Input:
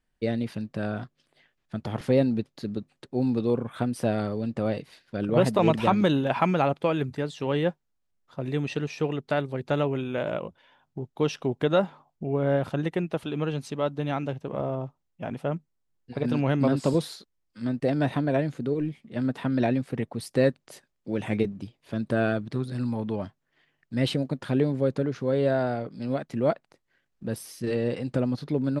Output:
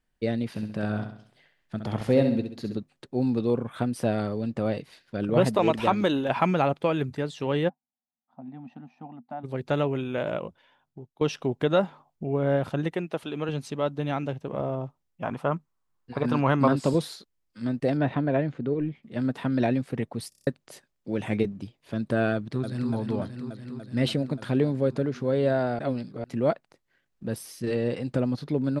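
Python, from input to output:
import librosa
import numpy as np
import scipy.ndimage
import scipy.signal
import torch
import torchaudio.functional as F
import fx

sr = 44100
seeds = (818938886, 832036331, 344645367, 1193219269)

y = fx.echo_feedback(x, sr, ms=66, feedback_pct=44, wet_db=-7, at=(0.54, 2.76), fade=0.02)
y = fx.peak_eq(y, sr, hz=150.0, db=-9.5, octaves=0.75, at=(5.55, 6.29))
y = fx.double_bandpass(y, sr, hz=430.0, octaves=1.7, at=(7.68, 9.43), fade=0.02)
y = fx.highpass(y, sr, hz=250.0, slope=6, at=(12.93, 13.49))
y = fx.peak_eq(y, sr, hz=1100.0, db=12.5, octaves=0.82, at=(15.23, 16.73))
y = fx.lowpass(y, sr, hz=2900.0, slope=12, at=(17.97, 19.03))
y = fx.echo_throw(y, sr, start_s=22.34, length_s=0.58, ms=290, feedback_pct=80, wet_db=-6.5)
y = fx.edit(y, sr, fx.fade_out_to(start_s=10.46, length_s=0.75, floor_db=-17.5),
    fx.stutter_over(start_s=20.29, slice_s=0.03, count=6),
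    fx.reverse_span(start_s=25.79, length_s=0.45), tone=tone)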